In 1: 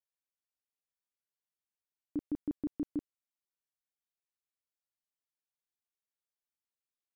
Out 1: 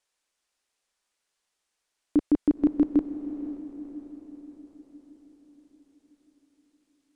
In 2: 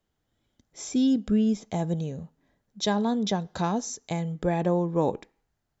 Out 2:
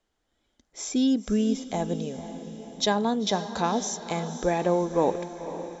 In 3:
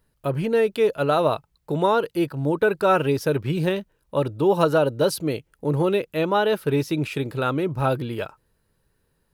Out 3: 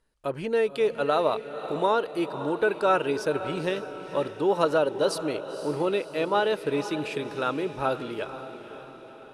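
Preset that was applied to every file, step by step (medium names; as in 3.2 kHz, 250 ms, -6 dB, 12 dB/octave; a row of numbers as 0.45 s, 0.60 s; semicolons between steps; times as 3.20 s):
low-pass 9.7 kHz 24 dB/octave; peaking EQ 120 Hz -13 dB 1.4 oct; on a send: echo that smears into a reverb 516 ms, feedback 54%, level -11.5 dB; on the sum: normalise loudness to -27 LUFS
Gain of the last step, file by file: +17.0 dB, +3.5 dB, -3.0 dB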